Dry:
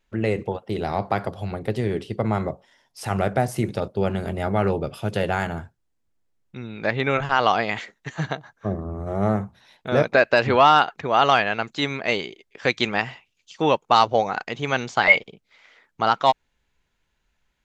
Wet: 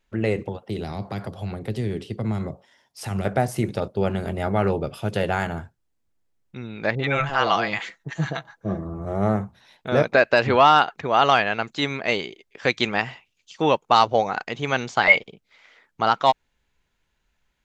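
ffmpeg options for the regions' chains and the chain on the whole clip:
-filter_complex "[0:a]asettb=1/sr,asplit=3[a][b][c];[a]atrim=end=0.484[d];[b]atrim=start=0.48:end=3.25,asetpts=PTS-STARTPTS,afade=t=in:d=0.004:c=qsin,afade=t=out:st=2.766:d=0.004:c=qsin,highpass=48,acrossover=split=310|3000[e][f][g];[f]acompressor=threshold=-34dB:ratio=4:attack=3.2:release=140:knee=2.83:detection=peak[h];[e][h][g]amix=inputs=3:normalize=0[i];[c]atrim=start=3.246[j];[d][i]acrossfade=d=0.004:c1=hsin:c2=qsin[k];[k][j]acrossfade=d=0.004:c1=qsin:c2=hsin,asettb=1/sr,asplit=3[l][m][n];[l]atrim=end=6.954[o];[m]atrim=start=6.95:end=9.05,asetpts=PTS-STARTPTS,afade=t=in:d=0.004:c=qsin,afade=t=out:st=2.096:d=0.004:c=qsin,aecho=1:1:6:0.38,atrim=end_sample=92610,acrossover=split=700[p][q];[q]adelay=40[r];[p][r]amix=inputs=2:normalize=0,atrim=end_sample=92610[s];[n]atrim=start=9.046[t];[o][s]acrossfade=d=0.004:c1=hsin:c2=qsin[u];[u][t]acrossfade=d=0.004:c1=qsin:c2=hsin"

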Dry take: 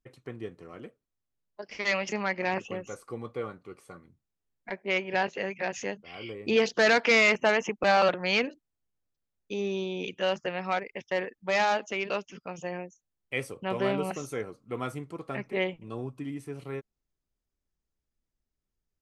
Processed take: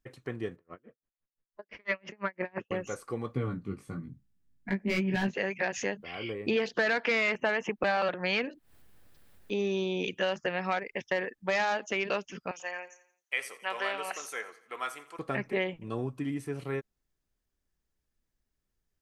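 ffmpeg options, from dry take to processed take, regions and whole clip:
-filter_complex "[0:a]asettb=1/sr,asplit=3[a][b][c];[a]atrim=end=0.564[d];[b]atrim=start=0.56:end=2.71,asetpts=PTS-STARTPTS,afade=t=in:d=0.004:c=qsin,afade=t=out:st=2.146:d=0.004:c=qsin,lowpass=2.1k,bandreject=f=780:w=11,aeval=exprs='val(0)*pow(10,-38*(0.5-0.5*cos(2*PI*5.9*n/s))/20)':c=same[e];[c]atrim=start=2.706[f];[d][e]acrossfade=d=0.004:c1=hsin:c2=qsin[g];[g][f]acrossfade=d=0.004:c1=qsin:c2=hsin,asettb=1/sr,asplit=3[h][i][j];[h]atrim=end=3.344[k];[i]atrim=start=3.34:end=5.34,asetpts=PTS-STARTPTS,afade=t=in:d=0.004:c=qsin,afade=t=out:st=1.996:d=0.004:c=qsin,volume=22.5dB,asoftclip=hard,volume=-22.5dB,lowshelf=f=340:t=q:w=1.5:g=13,flanger=delay=15:depth=5.5:speed=1.1[l];[j]atrim=start=5.336[m];[k][l]acrossfade=d=0.004:c1=hsin:c2=qsin[n];[n][m]acrossfade=d=0.004:c1=qsin:c2=hsin,asettb=1/sr,asplit=3[o][p][q];[o]atrim=end=5.894[r];[p]atrim=start=5.89:end=9.6,asetpts=PTS-STARTPTS,afade=t=in:d=0.004:c=qsin,afade=t=out:st=3.706:d=0.004:c=qsin,equalizer=f=6.3k:t=o:w=0.73:g=-7.5,acompressor=mode=upward:threshold=-40dB:ratio=2.5:attack=3.2:release=140:knee=2.83:detection=peak[s];[q]atrim=start=9.596[t];[r][s]acrossfade=d=0.004:c1=hsin:c2=qsin[u];[u][t]acrossfade=d=0.004:c1=qsin:c2=hsin,asettb=1/sr,asplit=3[v][w][x];[v]atrim=end=12.514[y];[w]atrim=start=12.51:end=15.19,asetpts=PTS-STARTPTS,afade=t=in:d=0.004:c=qsin,afade=t=out:st=2.676:d=0.004:c=qsin,highpass=930,aecho=1:1:86|172|258|344:0.133|0.064|0.0307|0.0147,atrim=end_sample=118188[z];[x]atrim=start=15.186[aa];[y][z]acrossfade=d=0.004:c1=hsin:c2=qsin[ab];[ab][aa]acrossfade=d=0.004:c1=qsin:c2=hsin,equalizer=f=1.7k:w=5.1:g=5,acompressor=threshold=-29dB:ratio=4,volume=3dB"

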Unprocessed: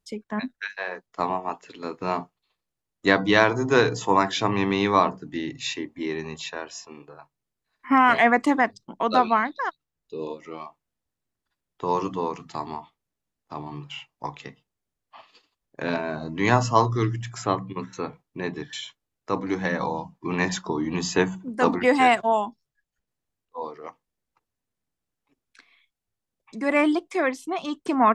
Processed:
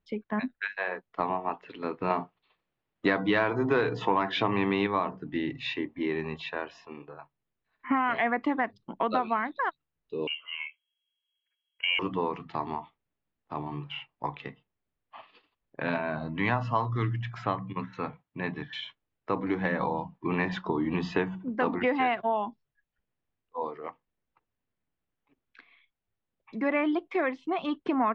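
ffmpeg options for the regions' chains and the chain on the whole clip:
-filter_complex "[0:a]asettb=1/sr,asplit=3[a][b][c];[a]atrim=end=2.104[d];[b]atrim=start=2.1:end=4.87,asetpts=PTS-STARTPTS,afade=t=in:d=0.004:c=qsin,afade=t=out:st=2.766:d=0.004:c=qsin,lowshelf=f=86:g=-9.5,acontrast=71[e];[c]atrim=start=4.866[f];[d][e]acrossfade=d=0.004:c1=hsin:c2=qsin[g];[g][f]acrossfade=d=0.004:c1=qsin:c2=hsin,asettb=1/sr,asplit=3[h][i][j];[h]atrim=end=10.274[k];[i]atrim=start=10.27:end=11.99,asetpts=PTS-STARTPTS,afade=t=in:d=0.004:c=qsin,afade=t=out:st=1.716:d=0.004:c=qsin,adynamicsmooth=sensitivity=2.5:basefreq=1.5k,aecho=1:1:1.8:0.49,atrim=end_sample=75852,lowpass=f=2.8k:t=q:w=0.5098,lowpass=f=2.8k:t=q:w=0.6013,lowpass=f=2.8k:t=q:w=0.9,lowpass=f=2.8k:t=q:w=2.563,afreqshift=-3300[l];[j]atrim=start=11.986[m];[k][l]acrossfade=d=0.004:c1=hsin:c2=qsin[n];[n][m]acrossfade=d=0.004:c1=qsin:c2=hsin,asettb=1/sr,asplit=3[o][p][q];[o]atrim=end=15.804[r];[p]atrim=start=15.8:end=18.73,asetpts=PTS-STARTPTS,afade=t=in:d=0.004:c=qsin,afade=t=out:st=2.926:d=0.004:c=qsin,highpass=58,equalizer=f=380:t=o:w=0.71:g=-8.5[s];[q]atrim=start=18.726[t];[r][s]acrossfade=d=0.004:c1=hsin:c2=qsin[u];[u][t]acrossfade=d=0.004:c1=qsin:c2=hsin,lowpass=f=3.3k:w=0.5412,lowpass=f=3.3k:w=1.3066,acompressor=threshold=-24dB:ratio=4"

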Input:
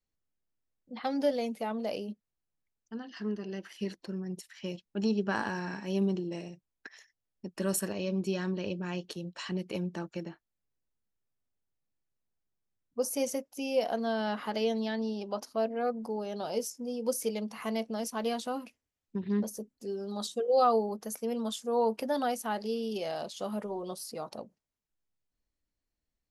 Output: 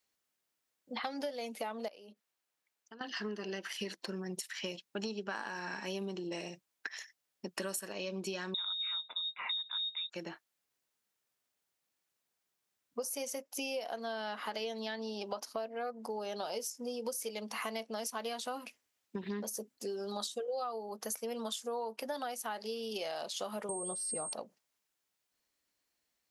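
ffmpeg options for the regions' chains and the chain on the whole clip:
-filter_complex "[0:a]asettb=1/sr,asplit=3[a][b][c];[a]atrim=end=1.884[d];[b]atrim=start=1.88:end=3.01,asetpts=PTS-STARTPTS,afade=t=in:d=0.004:c=qsin,afade=t=out:st=1.126:d=0.004:c=qsin,bass=f=250:g=-7,treble=f=4k:g=-3,acompressor=threshold=-52dB:ratio=6:attack=3.2:release=140:knee=1:detection=peak[e];[c]atrim=start=3.006[f];[d][e]acrossfade=d=0.004:c1=hsin:c2=qsin[g];[g][f]acrossfade=d=0.004:c1=qsin:c2=hsin,asettb=1/sr,asplit=3[h][i][j];[h]atrim=end=8.544[k];[i]atrim=start=8.54:end=10.1,asetpts=PTS-STARTPTS,afade=t=in:d=0.004:c=qsin,afade=t=out:st=1.556:d=0.004:c=qsin,asuperstop=centerf=680:order=4:qfactor=0.76,lowshelf=f=190:g=10,lowpass=f=3.3k:t=q:w=0.5098,lowpass=f=3.3k:t=q:w=0.6013,lowpass=f=3.3k:t=q:w=0.9,lowpass=f=3.3k:t=q:w=2.563,afreqshift=-3900[l];[j]atrim=start=10.096[m];[k][l]acrossfade=d=0.004:c1=hsin:c2=qsin[n];[n][m]acrossfade=d=0.004:c1=qsin:c2=hsin,asettb=1/sr,asplit=3[o][p][q];[o]atrim=end=23.694[r];[p]atrim=start=23.69:end=24.33,asetpts=PTS-STARTPTS,afade=t=in:d=0.004:c=qsin,afade=t=out:st=0.636:d=0.004:c=qsin,aemphasis=mode=reproduction:type=riaa,aeval=exprs='val(0)+0.0112*sin(2*PI*8500*n/s)':c=same[s];[q]atrim=start=24.326[t];[r][s]acrossfade=d=0.004:c1=hsin:c2=qsin[u];[u][t]acrossfade=d=0.004:c1=qsin:c2=hsin,highpass=f=860:p=1,acompressor=threshold=-46dB:ratio=10,volume=10.5dB"

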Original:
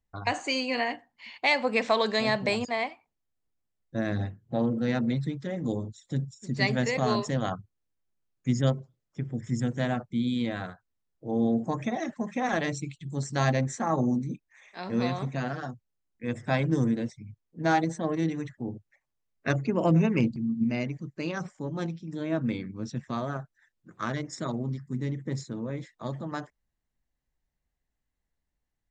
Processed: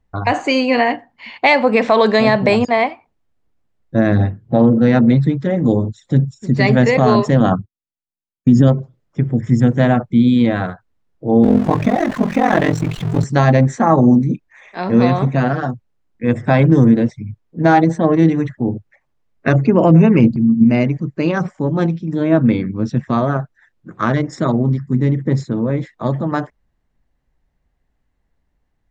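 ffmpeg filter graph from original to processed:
-filter_complex "[0:a]asettb=1/sr,asplit=3[a][b][c];[a]atrim=end=7.404[d];[b]atrim=start=7.4:end=8.68,asetpts=PTS-STARTPTS,afade=t=in:d=0.004:c=qsin,afade=t=out:st=1.276:d=0.004:c=qsin,equalizer=f=240:w=1.3:g=7.5,agate=range=-33dB:threshold=-44dB:ratio=3:release=100:detection=peak,asuperstop=centerf=2100:order=4:qfactor=5.5[e];[c]atrim=start=8.676[f];[d][e]acrossfade=d=0.004:c1=hsin:c2=qsin[g];[g][f]acrossfade=d=0.004:c1=qsin:c2=hsin,asettb=1/sr,asplit=3[h][i][j];[h]atrim=end=11.434[k];[i]atrim=start=11.43:end=13.24,asetpts=PTS-STARTPTS,afade=t=in:d=0.004:c=qsin,afade=t=out:st=1.806:d=0.004:c=qsin,aeval=exprs='val(0)+0.5*0.0224*sgn(val(0))':c=same,aeval=exprs='val(0)*sin(2*PI*22*n/s)':c=same[l];[j]atrim=start=13.236[m];[k][l]acrossfade=d=0.004:c1=hsin:c2=qsin[n];[n][m]acrossfade=d=0.004:c1=qsin:c2=hsin,lowpass=f=1.5k:p=1,alimiter=level_in=17dB:limit=-1dB:release=50:level=0:latency=1,volume=-1dB"

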